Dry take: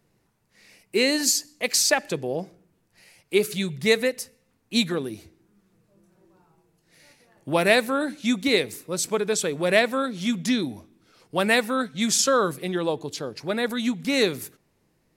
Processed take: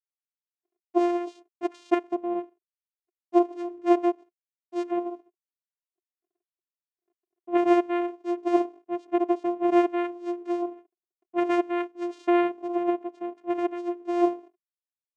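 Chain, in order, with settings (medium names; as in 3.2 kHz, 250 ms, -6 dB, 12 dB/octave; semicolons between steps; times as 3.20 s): low-pass 1.6 kHz 12 dB/octave; hysteresis with a dead band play -45 dBFS; vocoder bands 4, saw 349 Hz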